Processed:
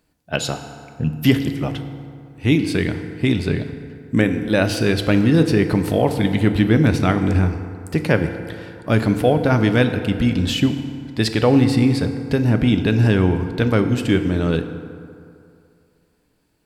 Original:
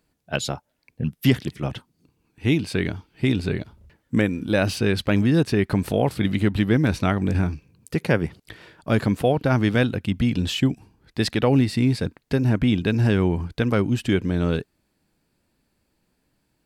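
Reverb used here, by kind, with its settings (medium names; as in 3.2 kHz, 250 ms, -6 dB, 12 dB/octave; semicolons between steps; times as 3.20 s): FDN reverb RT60 2.5 s, low-frequency decay 0.9×, high-frequency decay 0.5×, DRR 7 dB; trim +3 dB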